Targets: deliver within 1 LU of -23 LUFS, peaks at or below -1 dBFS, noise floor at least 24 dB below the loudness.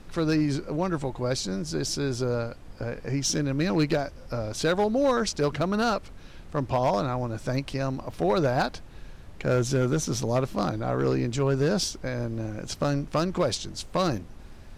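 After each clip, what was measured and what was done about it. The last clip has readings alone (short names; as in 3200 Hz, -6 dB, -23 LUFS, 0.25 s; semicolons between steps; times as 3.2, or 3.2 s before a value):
clipped 0.7%; flat tops at -17.0 dBFS; noise floor -45 dBFS; noise floor target -52 dBFS; loudness -27.5 LUFS; peak -17.0 dBFS; loudness target -23.0 LUFS
-> clip repair -17 dBFS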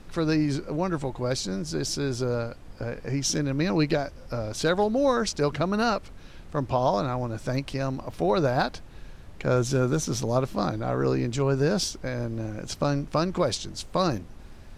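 clipped 0.0%; noise floor -45 dBFS; noise floor target -51 dBFS
-> noise print and reduce 6 dB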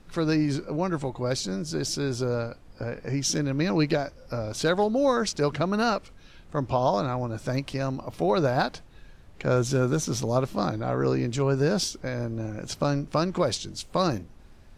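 noise floor -51 dBFS; loudness -27.0 LUFS; peak -11.5 dBFS; loudness target -23.0 LUFS
-> gain +4 dB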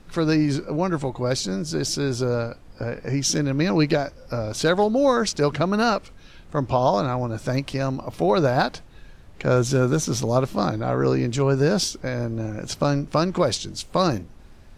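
loudness -23.0 LUFS; peak -7.5 dBFS; noise floor -47 dBFS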